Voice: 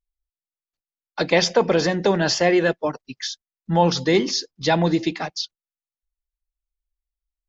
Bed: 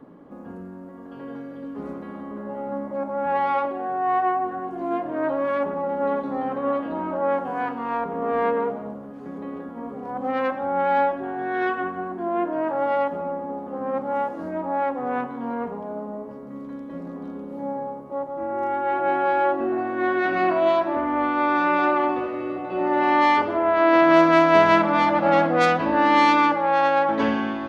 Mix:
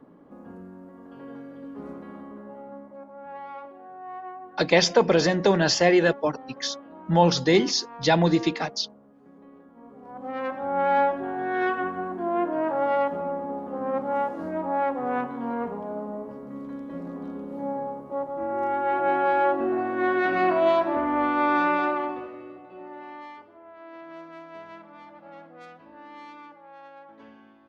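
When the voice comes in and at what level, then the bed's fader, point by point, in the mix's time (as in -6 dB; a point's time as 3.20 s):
3.40 s, -1.0 dB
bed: 2.16 s -5 dB
3.11 s -16.5 dB
9.67 s -16.5 dB
10.84 s -1 dB
21.61 s -1 dB
23.48 s -27.5 dB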